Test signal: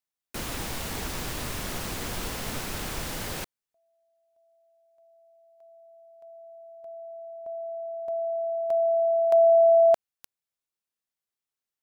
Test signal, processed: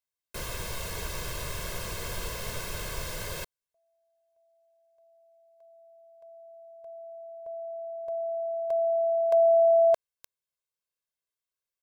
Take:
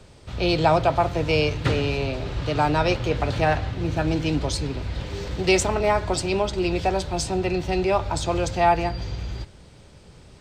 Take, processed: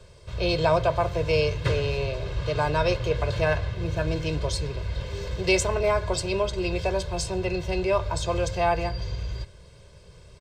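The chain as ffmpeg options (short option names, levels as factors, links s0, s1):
-af "aecho=1:1:1.9:0.78,volume=0.596"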